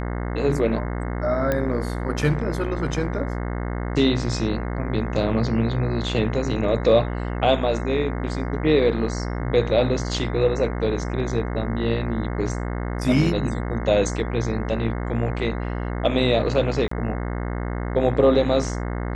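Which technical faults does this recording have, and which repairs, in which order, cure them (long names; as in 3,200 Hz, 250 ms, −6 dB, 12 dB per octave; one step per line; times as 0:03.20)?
mains buzz 60 Hz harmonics 36 −27 dBFS
0:01.52: click −10 dBFS
0:16.88–0:16.91: drop-out 34 ms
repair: click removal
hum removal 60 Hz, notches 36
repair the gap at 0:16.88, 34 ms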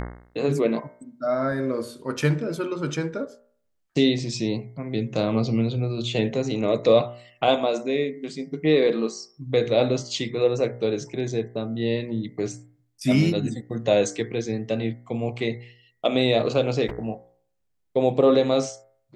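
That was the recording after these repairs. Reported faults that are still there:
none of them is left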